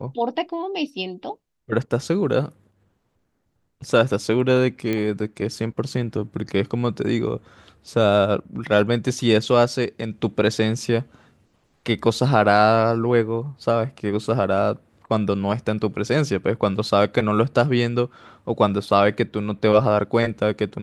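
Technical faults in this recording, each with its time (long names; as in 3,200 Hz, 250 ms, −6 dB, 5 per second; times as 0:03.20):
0:04.93: click −12 dBFS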